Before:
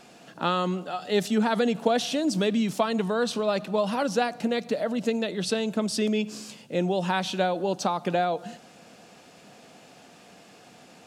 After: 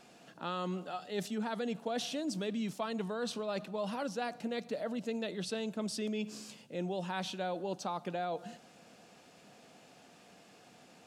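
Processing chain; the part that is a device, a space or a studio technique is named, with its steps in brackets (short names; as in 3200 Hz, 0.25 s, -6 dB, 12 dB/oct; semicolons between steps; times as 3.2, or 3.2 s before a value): compression on the reversed sound (reverse; compressor, threshold -25 dBFS, peak gain reduction 8.5 dB; reverse); gain -7.5 dB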